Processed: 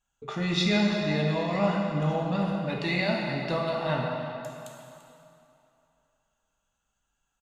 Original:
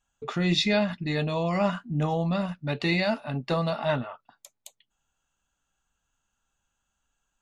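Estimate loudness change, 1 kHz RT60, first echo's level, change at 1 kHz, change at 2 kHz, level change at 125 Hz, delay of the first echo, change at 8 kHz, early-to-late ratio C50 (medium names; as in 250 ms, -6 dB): -0.5 dB, 2.9 s, -15.0 dB, 0.0 dB, 0.0 dB, -0.5 dB, 341 ms, -1.0 dB, 0.5 dB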